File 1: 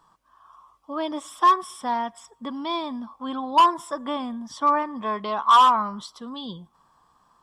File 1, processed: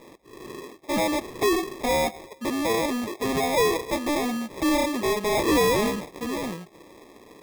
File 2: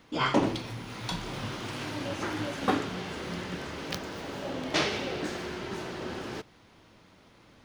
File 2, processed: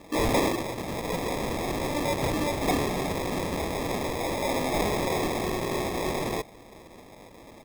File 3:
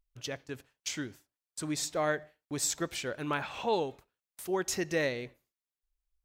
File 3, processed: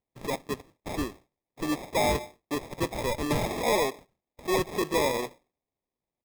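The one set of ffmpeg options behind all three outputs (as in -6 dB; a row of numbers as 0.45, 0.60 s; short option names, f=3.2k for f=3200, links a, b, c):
-filter_complex "[0:a]highpass=130,asplit=2[a][b];[b]highpass=f=720:p=1,volume=29dB,asoftclip=type=tanh:threshold=-7dB[c];[a][c]amix=inputs=2:normalize=0,lowpass=f=1.9k:p=1,volume=-6dB,aresample=8000,aresample=44100,acrusher=samples=30:mix=1:aa=0.000001,volume=-7.5dB"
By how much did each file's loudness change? -2.0, +4.5, +4.0 LU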